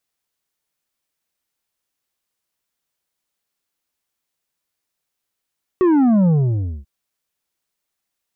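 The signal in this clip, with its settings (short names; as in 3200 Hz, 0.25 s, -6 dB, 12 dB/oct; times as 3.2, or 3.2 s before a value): sub drop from 380 Hz, over 1.04 s, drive 7 dB, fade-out 0.58 s, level -12 dB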